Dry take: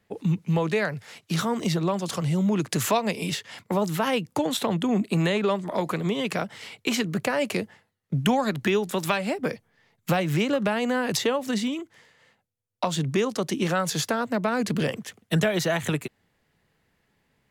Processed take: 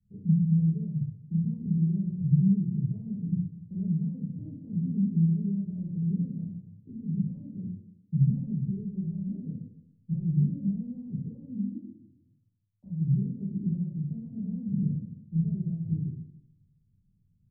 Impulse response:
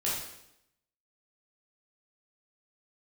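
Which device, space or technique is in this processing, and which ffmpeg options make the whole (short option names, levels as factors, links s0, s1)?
club heard from the street: -filter_complex "[0:a]alimiter=limit=0.106:level=0:latency=1:release=142,lowpass=f=170:w=0.5412,lowpass=f=170:w=1.3066[s0];[1:a]atrim=start_sample=2205[s1];[s0][s1]afir=irnorm=-1:irlink=0"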